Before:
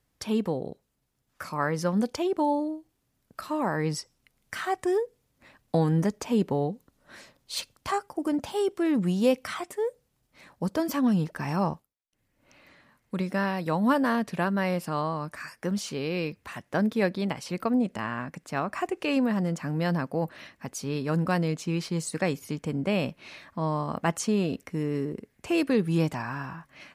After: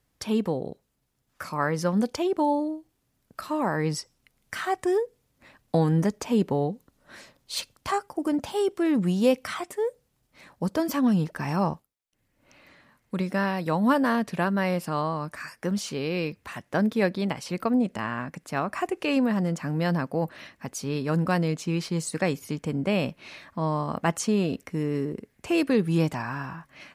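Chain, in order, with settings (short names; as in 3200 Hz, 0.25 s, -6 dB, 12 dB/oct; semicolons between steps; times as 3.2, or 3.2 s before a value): 18.41–19.02 bell 11000 Hz +6.5 dB 0.21 oct; gain +1.5 dB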